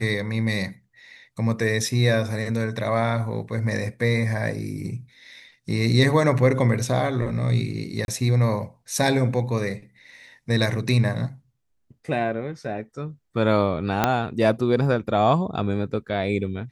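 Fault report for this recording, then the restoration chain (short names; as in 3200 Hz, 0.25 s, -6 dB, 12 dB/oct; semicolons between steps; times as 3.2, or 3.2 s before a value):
8.05–8.08 gap 31 ms
14.04 pop -4 dBFS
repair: de-click; interpolate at 8.05, 31 ms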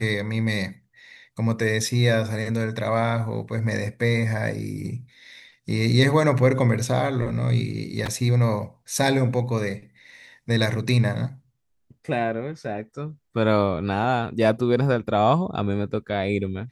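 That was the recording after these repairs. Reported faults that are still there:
14.04 pop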